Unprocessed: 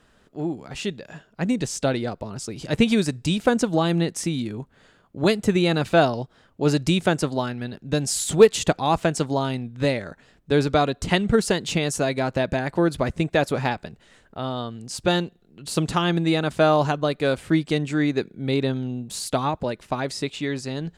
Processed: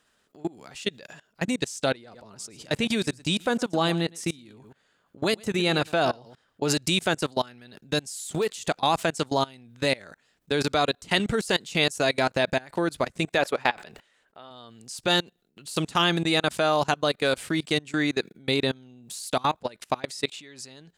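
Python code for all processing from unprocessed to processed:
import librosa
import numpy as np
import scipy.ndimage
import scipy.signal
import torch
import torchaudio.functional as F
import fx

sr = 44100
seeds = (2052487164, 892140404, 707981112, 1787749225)

y = fx.chain(x, sr, fx.high_shelf(hz=2800.0, db=-4.5),
    fx.echo_single(ms=112, db=-15.5), at=(1.92, 6.7))
y = fx.chain(y, sr, fx.bass_treble(bass_db=-8, treble_db=-8),
    fx.sustainer(db_per_s=94.0), at=(13.38, 14.51))
y = fx.level_steps(y, sr, step_db=24)
y = fx.tilt_eq(y, sr, slope=2.5)
y = y * 10.0 ** (4.0 / 20.0)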